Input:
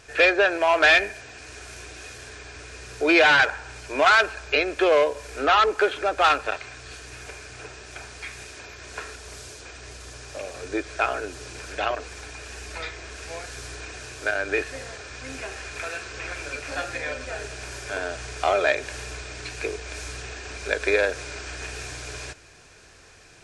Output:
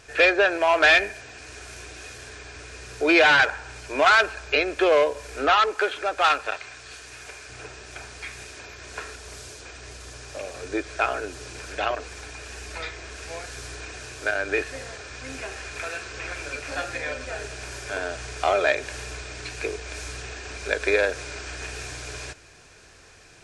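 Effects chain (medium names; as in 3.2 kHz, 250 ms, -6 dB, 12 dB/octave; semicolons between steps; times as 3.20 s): 5.54–7.49 s: bass shelf 430 Hz -8 dB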